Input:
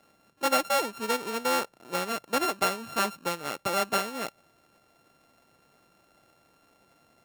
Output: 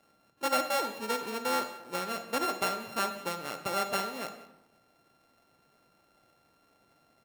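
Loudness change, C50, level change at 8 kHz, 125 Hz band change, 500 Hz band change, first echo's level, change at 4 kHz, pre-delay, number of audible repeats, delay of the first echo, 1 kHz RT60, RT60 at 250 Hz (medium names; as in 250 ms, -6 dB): -3.5 dB, 9.0 dB, -5.0 dB, -4.0 dB, -4.0 dB, -20.5 dB, -3.5 dB, 34 ms, 1, 184 ms, 0.90 s, 1.1 s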